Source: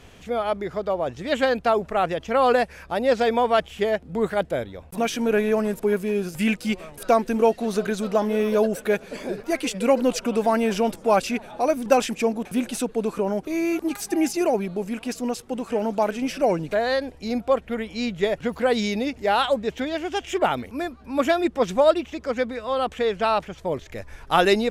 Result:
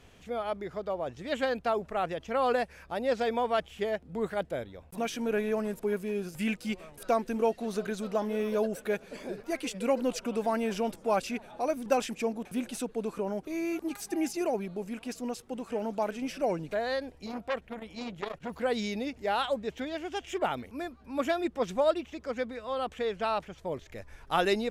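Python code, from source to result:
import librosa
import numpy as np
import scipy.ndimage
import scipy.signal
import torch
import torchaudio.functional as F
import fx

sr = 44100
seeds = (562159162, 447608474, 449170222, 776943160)

y = fx.transformer_sat(x, sr, knee_hz=1600.0, at=(17.26, 18.5))
y = F.gain(torch.from_numpy(y), -8.5).numpy()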